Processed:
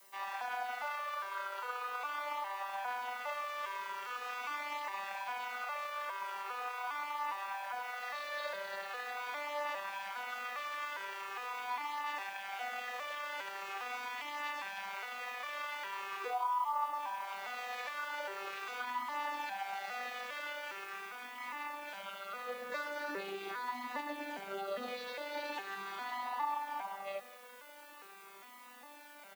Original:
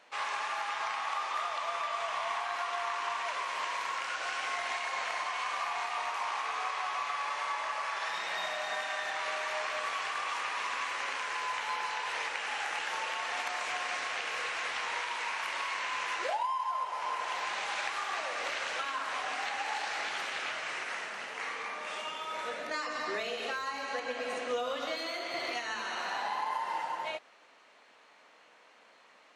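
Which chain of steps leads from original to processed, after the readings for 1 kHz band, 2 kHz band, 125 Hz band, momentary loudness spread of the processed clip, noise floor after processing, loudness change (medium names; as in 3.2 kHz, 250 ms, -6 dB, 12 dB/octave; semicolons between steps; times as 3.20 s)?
-4.5 dB, -6.0 dB, no reading, 5 LU, -55 dBFS, -5.5 dB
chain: vocoder on a broken chord major triad, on G3, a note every 406 ms; bass shelf 450 Hz -8.5 dB; reverse; upward compressor, threshold -41 dBFS; reverse; added noise blue -59 dBFS; on a send: delay 172 ms -20.5 dB; on the sum: Shepard-style flanger falling 0.42 Hz; trim +1.5 dB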